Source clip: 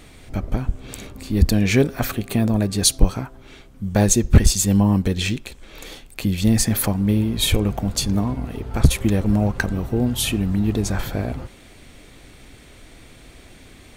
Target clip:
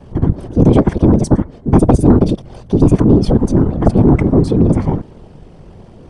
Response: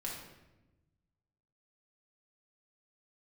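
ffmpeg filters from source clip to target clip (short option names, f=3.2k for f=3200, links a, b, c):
-filter_complex "[0:a]lowshelf=f=370:g=5,aresample=16000,aresample=44100,adynamicequalizer=threshold=0.0398:dfrequency=130:dqfactor=1.4:tfrequency=130:tqfactor=1.4:attack=5:release=100:ratio=0.375:range=3:mode=boostabove:tftype=bell,afftfilt=real='hypot(re,im)*cos(2*PI*random(0))':imag='hypot(re,im)*sin(2*PI*random(1))':win_size=512:overlap=0.75,asetrate=100989,aresample=44100,acrossover=split=2400[a][b];[a]aeval=exprs='1.33*sin(PI/2*3.55*val(0)/1.33)':c=same[c];[c][b]amix=inputs=2:normalize=0,asetrate=26222,aresample=44100,atempo=1.68179,volume=-4dB"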